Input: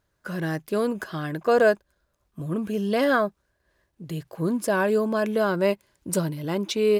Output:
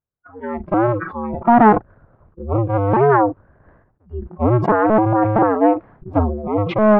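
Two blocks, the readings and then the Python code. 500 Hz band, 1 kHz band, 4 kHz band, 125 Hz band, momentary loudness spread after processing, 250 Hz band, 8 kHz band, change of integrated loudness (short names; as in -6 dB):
+5.5 dB, +14.0 dB, n/a, +11.0 dB, 16 LU, +9.0 dB, under -30 dB, +8.0 dB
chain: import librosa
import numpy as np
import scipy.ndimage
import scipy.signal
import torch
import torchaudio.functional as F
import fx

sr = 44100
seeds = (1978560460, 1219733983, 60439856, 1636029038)

y = fx.cycle_switch(x, sr, every=2, mode='inverted')
y = scipy.signal.sosfilt(scipy.signal.butter(4, 1400.0, 'lowpass', fs=sr, output='sos'), y)
y = fx.noise_reduce_blind(y, sr, reduce_db=28)
y = fx.peak_eq(y, sr, hz=120.0, db=6.0, octaves=0.97)
y = fx.sustainer(y, sr, db_per_s=71.0)
y = F.gain(torch.from_numpy(y), 8.0).numpy()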